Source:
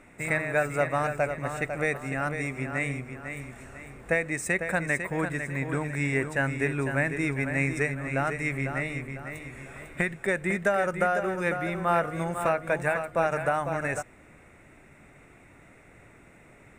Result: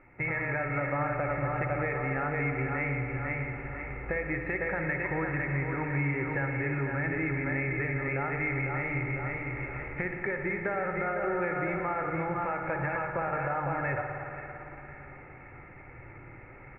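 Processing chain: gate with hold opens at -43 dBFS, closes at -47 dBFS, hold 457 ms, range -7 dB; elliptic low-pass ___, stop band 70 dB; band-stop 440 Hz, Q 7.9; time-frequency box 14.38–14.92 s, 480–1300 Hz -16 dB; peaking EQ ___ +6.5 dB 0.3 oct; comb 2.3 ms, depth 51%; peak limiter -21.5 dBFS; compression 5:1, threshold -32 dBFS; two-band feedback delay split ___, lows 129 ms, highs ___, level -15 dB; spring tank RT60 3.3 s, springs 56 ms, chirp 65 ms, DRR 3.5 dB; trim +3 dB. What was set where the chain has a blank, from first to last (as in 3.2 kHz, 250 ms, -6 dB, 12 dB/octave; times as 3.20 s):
2.3 kHz, 130 Hz, 730 Hz, 521 ms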